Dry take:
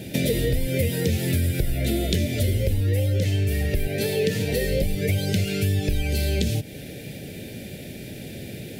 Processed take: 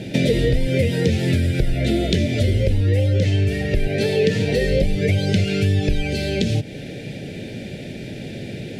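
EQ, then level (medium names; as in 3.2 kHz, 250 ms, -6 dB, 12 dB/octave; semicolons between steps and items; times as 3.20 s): distance through air 86 m; peaking EQ 73 Hz -12 dB 0.25 oct; +5.5 dB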